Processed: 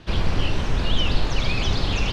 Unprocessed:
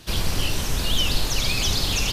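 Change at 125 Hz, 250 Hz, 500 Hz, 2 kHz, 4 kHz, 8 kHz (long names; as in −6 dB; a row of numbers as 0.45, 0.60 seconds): +3.0, +3.0, +3.0, −0.5, −4.5, −13.5 decibels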